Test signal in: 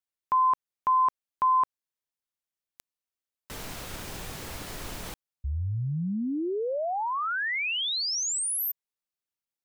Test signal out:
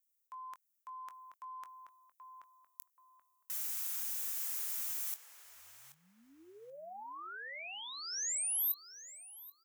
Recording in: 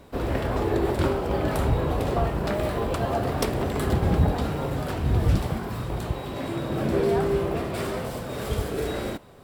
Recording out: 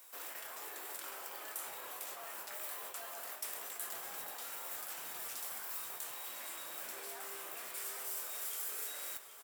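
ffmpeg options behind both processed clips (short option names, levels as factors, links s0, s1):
-filter_complex "[0:a]highpass=1300,highshelf=f=6700:g=7.5,areverse,acompressor=threshold=0.0112:ratio=6:attack=2.5:release=71:detection=rms,areverse,aexciter=amount=4.3:drive=1.2:freq=5800,asplit=2[s0][s1];[s1]adelay=22,volume=0.237[s2];[s0][s2]amix=inputs=2:normalize=0,asplit=2[s3][s4];[s4]adelay=780,lowpass=f=2600:p=1,volume=0.473,asplit=2[s5][s6];[s6]adelay=780,lowpass=f=2600:p=1,volume=0.28,asplit=2[s7][s8];[s8]adelay=780,lowpass=f=2600:p=1,volume=0.28,asplit=2[s9][s10];[s10]adelay=780,lowpass=f=2600:p=1,volume=0.28[s11];[s5][s7][s9][s11]amix=inputs=4:normalize=0[s12];[s3][s12]amix=inputs=2:normalize=0,volume=0.473"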